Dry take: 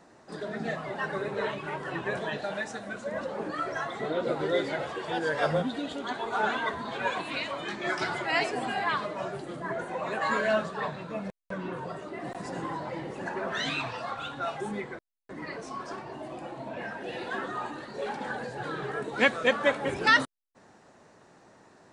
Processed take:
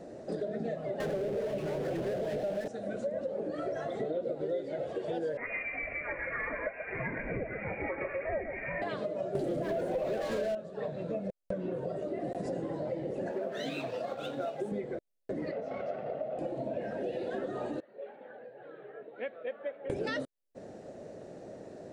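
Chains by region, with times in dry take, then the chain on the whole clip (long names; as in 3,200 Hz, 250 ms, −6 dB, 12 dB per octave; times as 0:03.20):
0:01.00–0:02.68: high-frequency loss of the air 190 metres + power curve on the samples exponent 0.35 + highs frequency-modulated by the lows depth 0.22 ms
0:05.37–0:08.82: single-tap delay 131 ms −10 dB + voice inversion scrambler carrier 2,600 Hz
0:09.35–0:10.55: mains-hum notches 60/120/180 Hz + leveller curve on the samples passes 5
0:13.31–0:14.72: mu-law and A-law mismatch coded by A + high-pass filter 170 Hz
0:15.51–0:16.39: lower of the sound and its delayed copy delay 1.5 ms + band-pass filter 200–2,300 Hz
0:17.80–0:19.90: Gaussian smoothing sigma 4.2 samples + first difference
whole clip: low shelf with overshoot 760 Hz +9 dB, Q 3; downward compressor 6 to 1, threshold −33 dBFS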